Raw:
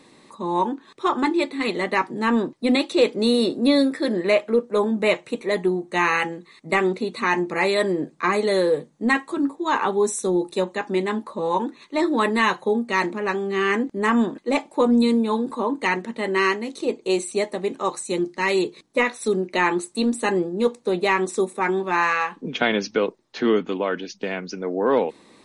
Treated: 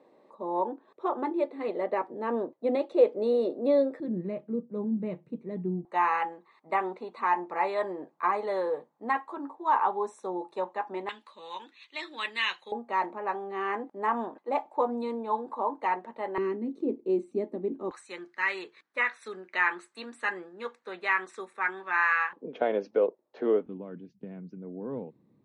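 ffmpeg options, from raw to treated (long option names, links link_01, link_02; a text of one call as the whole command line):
ffmpeg -i in.wav -af "asetnsamples=nb_out_samples=441:pad=0,asendcmd='4 bandpass f 160;5.85 bandpass f 880;11.09 bandpass f 2900;12.72 bandpass f 810;16.38 bandpass f 280;17.91 bandpass f 1600;22.33 bandpass f 550;23.66 bandpass f 130',bandpass=frequency=580:width_type=q:width=2.4:csg=0" out.wav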